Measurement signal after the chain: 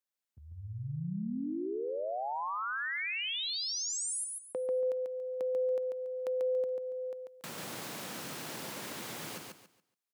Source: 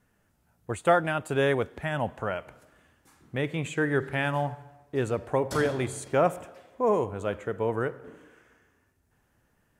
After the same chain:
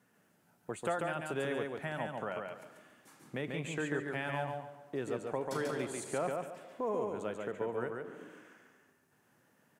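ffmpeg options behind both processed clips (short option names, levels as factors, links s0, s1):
-filter_complex "[0:a]highpass=f=140:w=0.5412,highpass=f=140:w=1.3066,acompressor=threshold=0.00794:ratio=2,asplit=2[s0][s1];[s1]aecho=0:1:141|282|423|564:0.668|0.174|0.0452|0.0117[s2];[s0][s2]amix=inputs=2:normalize=0"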